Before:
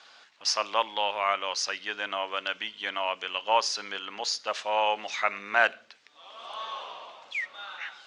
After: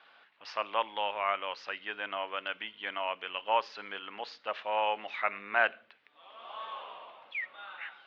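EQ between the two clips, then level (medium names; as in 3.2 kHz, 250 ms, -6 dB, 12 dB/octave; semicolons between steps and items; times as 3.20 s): low-pass 3.1 kHz 24 dB/octave; hum notches 60/120 Hz; -4.0 dB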